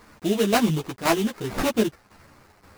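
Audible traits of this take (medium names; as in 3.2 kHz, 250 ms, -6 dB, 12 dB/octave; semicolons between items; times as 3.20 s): aliases and images of a low sample rate 3.3 kHz, jitter 20%; tremolo saw down 1.9 Hz, depth 65%; a quantiser's noise floor 10-bit, dither none; a shimmering, thickened sound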